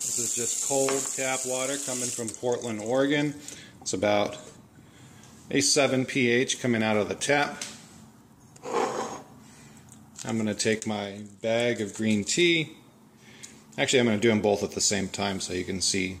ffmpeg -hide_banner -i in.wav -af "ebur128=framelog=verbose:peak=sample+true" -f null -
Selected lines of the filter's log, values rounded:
Integrated loudness:
  I:         -26.1 LUFS
  Threshold: -37.2 LUFS
Loudness range:
  LRA:         6.1 LU
  Threshold: -47.4 LUFS
  LRA low:   -31.7 LUFS
  LRA high:  -25.5 LUFS
Sample peak:
  Peak:       -8.3 dBFS
True peak:
  Peak:       -8.3 dBFS